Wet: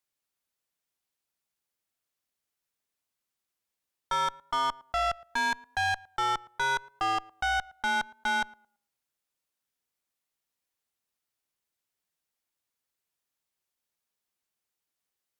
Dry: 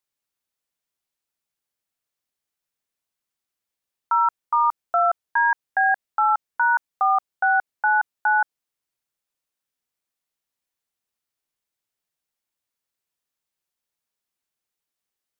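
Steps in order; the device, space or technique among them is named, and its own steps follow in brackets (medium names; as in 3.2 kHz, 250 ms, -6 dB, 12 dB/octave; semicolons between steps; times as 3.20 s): rockabilly slapback (valve stage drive 25 dB, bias 0.3; tape echo 112 ms, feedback 27%, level -19 dB, low-pass 1.3 kHz)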